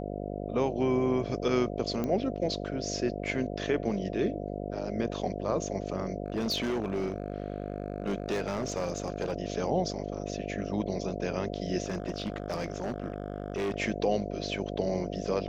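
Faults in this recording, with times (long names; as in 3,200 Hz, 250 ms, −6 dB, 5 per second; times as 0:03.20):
mains buzz 50 Hz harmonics 14 −36 dBFS
0:02.04: click −19 dBFS
0:06.26–0:09.33: clipping −26 dBFS
0:11.84–0:13.76: clipping −27.5 dBFS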